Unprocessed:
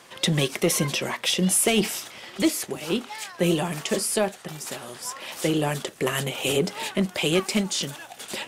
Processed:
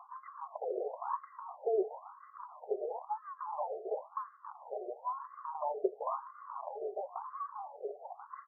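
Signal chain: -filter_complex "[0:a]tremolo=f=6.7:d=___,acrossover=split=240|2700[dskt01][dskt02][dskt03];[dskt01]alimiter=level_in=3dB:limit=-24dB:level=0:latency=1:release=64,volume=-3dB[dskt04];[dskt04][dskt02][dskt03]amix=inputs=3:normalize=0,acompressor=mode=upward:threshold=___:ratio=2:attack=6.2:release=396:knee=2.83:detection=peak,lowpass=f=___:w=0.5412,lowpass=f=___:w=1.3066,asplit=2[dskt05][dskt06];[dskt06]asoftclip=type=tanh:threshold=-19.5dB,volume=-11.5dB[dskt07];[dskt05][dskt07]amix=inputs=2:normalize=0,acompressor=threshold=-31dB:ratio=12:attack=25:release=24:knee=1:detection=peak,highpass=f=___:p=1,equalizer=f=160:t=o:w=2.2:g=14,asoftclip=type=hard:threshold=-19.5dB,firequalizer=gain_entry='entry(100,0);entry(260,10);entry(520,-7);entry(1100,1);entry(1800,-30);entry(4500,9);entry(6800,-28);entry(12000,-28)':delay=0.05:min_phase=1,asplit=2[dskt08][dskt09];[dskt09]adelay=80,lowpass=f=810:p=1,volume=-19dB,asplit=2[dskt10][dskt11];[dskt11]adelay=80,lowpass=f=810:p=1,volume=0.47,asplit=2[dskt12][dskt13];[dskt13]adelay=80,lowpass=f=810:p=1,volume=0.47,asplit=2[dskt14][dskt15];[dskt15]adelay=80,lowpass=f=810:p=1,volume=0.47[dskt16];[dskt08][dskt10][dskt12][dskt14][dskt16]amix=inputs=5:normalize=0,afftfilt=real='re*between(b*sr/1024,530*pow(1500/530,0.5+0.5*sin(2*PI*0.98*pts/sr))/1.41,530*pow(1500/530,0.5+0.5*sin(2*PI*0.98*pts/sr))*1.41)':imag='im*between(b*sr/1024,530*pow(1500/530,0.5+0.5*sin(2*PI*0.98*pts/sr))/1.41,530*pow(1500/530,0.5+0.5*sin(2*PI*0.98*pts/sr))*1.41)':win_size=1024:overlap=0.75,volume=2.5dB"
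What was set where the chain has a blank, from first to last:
0.57, -52dB, 3500, 3500, 96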